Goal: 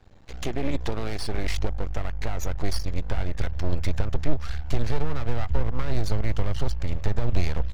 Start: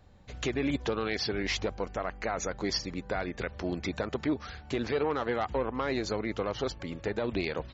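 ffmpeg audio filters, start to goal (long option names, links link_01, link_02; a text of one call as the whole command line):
ffmpeg -i in.wav -filter_complex "[0:a]acrossover=split=320[link_01][link_02];[link_02]acompressor=threshold=-37dB:ratio=2.5[link_03];[link_01][link_03]amix=inputs=2:normalize=0,aeval=exprs='max(val(0),0)':channel_layout=same,asubboost=boost=9:cutoff=87,volume=7dB" out.wav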